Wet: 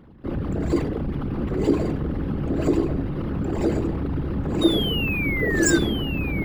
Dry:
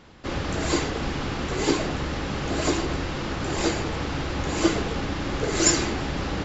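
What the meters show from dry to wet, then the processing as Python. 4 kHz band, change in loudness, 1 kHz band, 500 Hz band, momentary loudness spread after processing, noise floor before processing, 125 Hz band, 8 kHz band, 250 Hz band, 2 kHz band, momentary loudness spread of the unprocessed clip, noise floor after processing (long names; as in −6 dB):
+0.5 dB, +2.5 dB, −6.5 dB, +2.0 dB, 8 LU, −31 dBFS, +4.5 dB, can't be measured, +4.5 dB, +2.0 dB, 8 LU, −29 dBFS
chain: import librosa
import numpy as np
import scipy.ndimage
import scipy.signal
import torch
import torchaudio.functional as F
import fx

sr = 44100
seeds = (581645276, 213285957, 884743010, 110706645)

y = fx.envelope_sharpen(x, sr, power=2.0)
y = fx.peak_eq(y, sr, hz=200.0, db=4.5, octaves=1.6)
y = fx.spec_paint(y, sr, seeds[0], shape='fall', start_s=4.61, length_s=1.18, low_hz=1500.0, high_hz=3800.0, level_db=-27.0)
y = y + 10.0 ** (-6.5 / 20.0) * np.pad(y, (int(1093 * sr / 1000.0), 0))[:len(y)]
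y = np.interp(np.arange(len(y)), np.arange(len(y))[::3], y[::3])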